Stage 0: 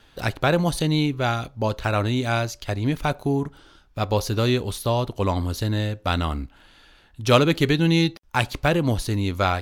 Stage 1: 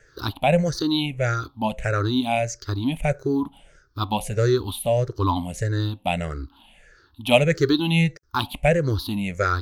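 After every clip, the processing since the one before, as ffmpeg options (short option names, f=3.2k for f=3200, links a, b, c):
-af "afftfilt=real='re*pow(10,23/40*sin(2*PI*(0.53*log(max(b,1)*sr/1024/100)/log(2)-(-1.6)*(pts-256)/sr)))':imag='im*pow(10,23/40*sin(2*PI*(0.53*log(max(b,1)*sr/1024/100)/log(2)-(-1.6)*(pts-256)/sr)))':win_size=1024:overlap=0.75,volume=-6dB"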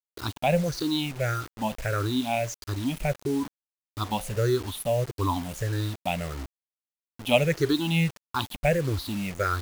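-af "acrusher=bits=5:mix=0:aa=0.000001,volume=-4.5dB"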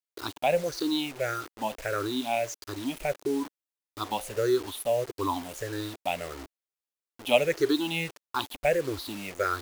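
-af "lowshelf=f=240:t=q:w=1.5:g=-10,volume=-1.5dB"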